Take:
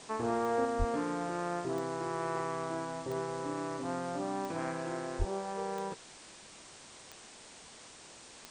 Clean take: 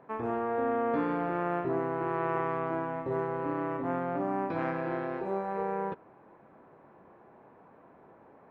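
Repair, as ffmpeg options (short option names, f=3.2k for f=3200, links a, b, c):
-filter_complex "[0:a]adeclick=t=4,asplit=3[a][b][c];[a]afade=t=out:st=0.78:d=0.02[d];[b]highpass=f=140:w=0.5412,highpass=f=140:w=1.3066,afade=t=in:st=0.78:d=0.02,afade=t=out:st=0.9:d=0.02[e];[c]afade=t=in:st=0.9:d=0.02[f];[d][e][f]amix=inputs=3:normalize=0,asplit=3[g][h][i];[g]afade=t=out:st=5.18:d=0.02[j];[h]highpass=f=140:w=0.5412,highpass=f=140:w=1.3066,afade=t=in:st=5.18:d=0.02,afade=t=out:st=5.3:d=0.02[k];[i]afade=t=in:st=5.3:d=0.02[l];[j][k][l]amix=inputs=3:normalize=0,afwtdn=0.0032,asetnsamples=n=441:p=0,asendcmd='0.65 volume volume 4.5dB',volume=0dB"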